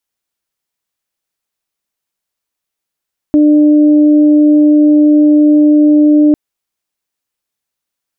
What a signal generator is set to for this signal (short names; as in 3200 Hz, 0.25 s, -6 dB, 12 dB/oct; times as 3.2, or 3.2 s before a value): steady additive tone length 3.00 s, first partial 299 Hz, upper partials -14.5 dB, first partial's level -4 dB